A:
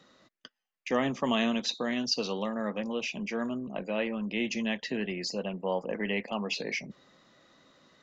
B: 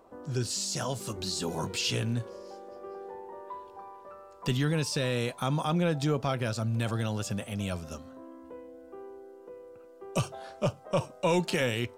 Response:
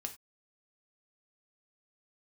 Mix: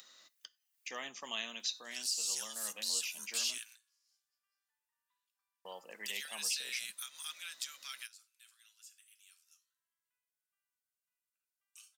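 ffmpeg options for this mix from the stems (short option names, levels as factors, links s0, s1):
-filter_complex "[0:a]acompressor=mode=upward:threshold=0.00631:ratio=2.5,volume=1.06,asplit=3[s0][s1][s2];[s0]atrim=end=3.58,asetpts=PTS-STARTPTS,afade=t=out:st=3.576:d=0.004:c=hsin[s3];[s1]atrim=start=3.58:end=5.65,asetpts=PTS-STARTPTS,volume=0[s4];[s2]atrim=start=5.65,asetpts=PTS-STARTPTS,afade=t=in:d=0.004:c=hsin[s5];[s3][s4][s5]concat=n=3:v=0:a=1,asplit=3[s6][s7][s8];[s7]volume=0.422[s9];[1:a]highpass=f=1500:w=0.5412,highpass=f=1500:w=1.3066,adelay=1600,volume=1.33,asplit=2[s10][s11];[s11]volume=0.133[s12];[s8]apad=whole_len=598678[s13];[s10][s13]sidechaingate=range=0.0282:threshold=0.00158:ratio=16:detection=peak[s14];[2:a]atrim=start_sample=2205[s15];[s9][s12]amix=inputs=2:normalize=0[s16];[s16][s15]afir=irnorm=-1:irlink=0[s17];[s6][s14][s17]amix=inputs=3:normalize=0,aderivative,alimiter=limit=0.0631:level=0:latency=1:release=365"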